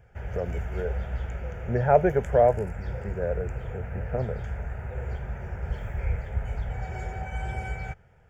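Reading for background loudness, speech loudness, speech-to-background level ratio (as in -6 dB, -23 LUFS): -34.5 LUFS, -26.5 LUFS, 8.0 dB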